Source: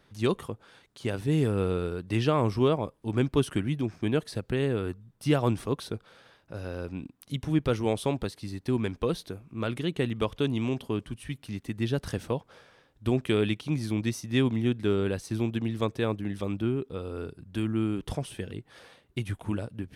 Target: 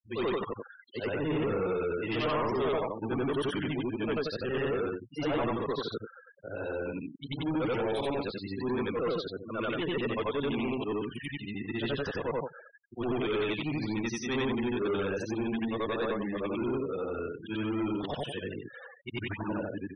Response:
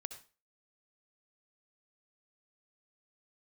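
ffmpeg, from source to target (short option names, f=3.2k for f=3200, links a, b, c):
-filter_complex "[0:a]afftfilt=real='re':imag='-im':win_size=8192:overlap=0.75,asplit=2[a][b];[b]highpass=f=720:p=1,volume=28dB,asoftclip=type=tanh:threshold=-15dB[c];[a][c]amix=inputs=2:normalize=0,lowpass=f=3.1k:p=1,volume=-6dB,afftfilt=real='re*gte(hypot(re,im),0.0316)':imag='im*gte(hypot(re,im),0.0316)':win_size=1024:overlap=0.75,volume=-6.5dB"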